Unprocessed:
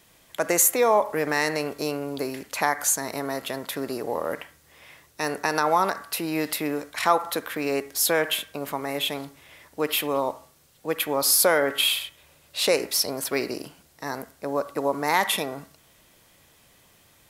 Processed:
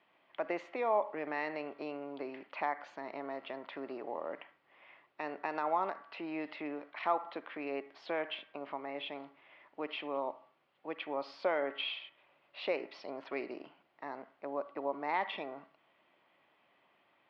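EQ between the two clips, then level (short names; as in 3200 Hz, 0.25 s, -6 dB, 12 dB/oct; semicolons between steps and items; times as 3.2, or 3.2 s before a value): dynamic EQ 1300 Hz, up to -6 dB, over -37 dBFS, Q 0.8; air absorption 340 m; speaker cabinet 410–3900 Hz, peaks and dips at 470 Hz -8 dB, 1600 Hz -5 dB, 3800 Hz -6 dB; -4.0 dB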